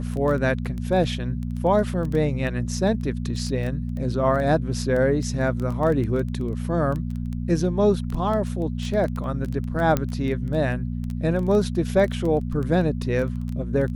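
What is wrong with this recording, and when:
crackle 12 per s
hum 60 Hz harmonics 4 -28 dBFS
9.97 s: pop -9 dBFS

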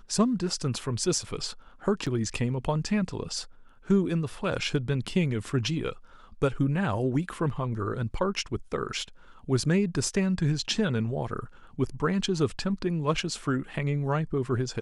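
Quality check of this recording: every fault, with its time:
2.06–2.07 s: dropout 6.4 ms

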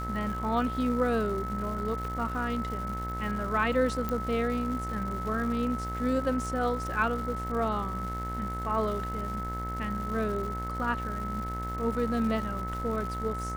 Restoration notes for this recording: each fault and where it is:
buzz 60 Hz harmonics 37 -36 dBFS
crackle 340 per s -38 dBFS
whine 1.3 kHz -35 dBFS
4.09 s: pop -18 dBFS

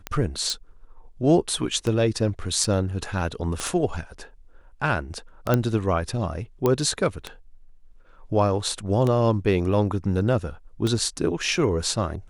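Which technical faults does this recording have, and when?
tick 33 1/3 rpm -13 dBFS
0.50 s: pop
2.64 s: dropout 3.5 ms
3.60 s: pop -14 dBFS
5.54 s: pop -7 dBFS
6.66 s: pop -9 dBFS

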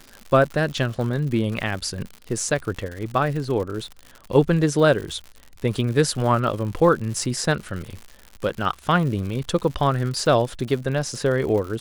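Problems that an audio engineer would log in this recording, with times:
crackle 130 per s -30 dBFS

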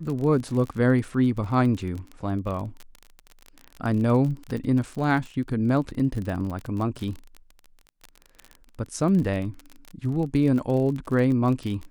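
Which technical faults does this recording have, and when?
crackle 33 per s -30 dBFS

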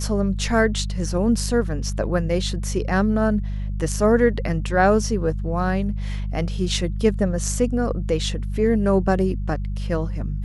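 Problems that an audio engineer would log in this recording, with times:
hum 50 Hz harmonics 4 -26 dBFS

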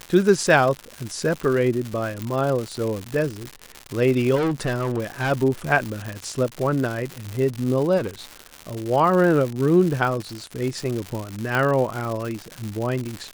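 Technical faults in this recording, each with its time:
crackle 200 per s -25 dBFS
2.22 s: pop
4.35–5.32 s: clipped -19.5 dBFS
7.97–8.44 s: clipped -23 dBFS
11.55 s: pop

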